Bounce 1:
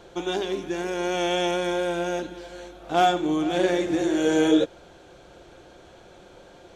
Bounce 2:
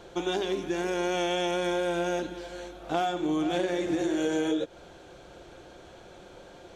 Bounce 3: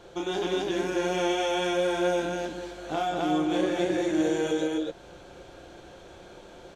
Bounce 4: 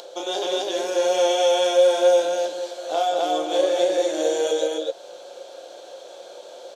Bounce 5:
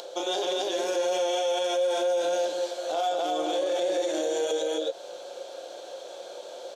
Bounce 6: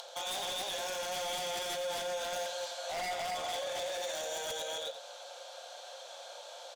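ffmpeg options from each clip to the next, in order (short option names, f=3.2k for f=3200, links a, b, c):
-af "acompressor=threshold=-24dB:ratio=12"
-af "aecho=1:1:32.07|195.3|262.4:0.631|0.355|1,volume=-2.5dB"
-af "highpass=f=550:t=q:w=4.3,acompressor=mode=upward:threshold=-39dB:ratio=2.5,highshelf=f=2.9k:t=q:w=1.5:g=8"
-af "alimiter=limit=-19.5dB:level=0:latency=1:release=53"
-af "highpass=f=720:w=0.5412,highpass=f=720:w=1.3066,aeval=exprs='0.0299*(abs(mod(val(0)/0.0299+3,4)-2)-1)':c=same,aecho=1:1:86:0.282,volume=-1.5dB"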